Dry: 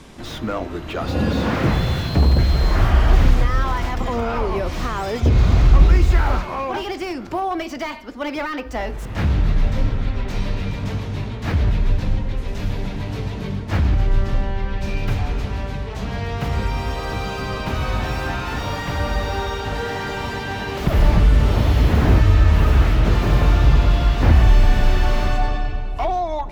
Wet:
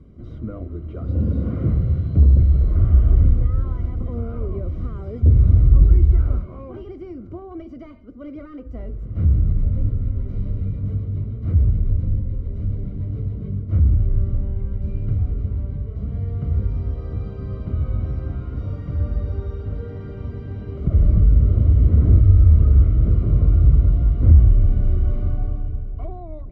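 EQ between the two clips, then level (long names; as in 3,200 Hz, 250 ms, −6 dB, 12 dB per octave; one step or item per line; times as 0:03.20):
moving average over 51 samples
parametric band 81 Hz +9.5 dB 1.3 octaves
−5.0 dB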